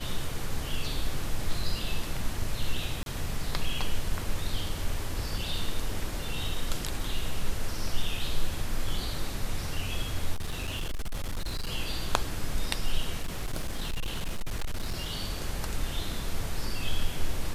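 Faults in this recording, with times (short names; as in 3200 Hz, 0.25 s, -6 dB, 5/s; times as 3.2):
3.03–3.06 gap 32 ms
10.34–11.7 clipped -27.5 dBFS
13.22–15.11 clipped -26.5 dBFS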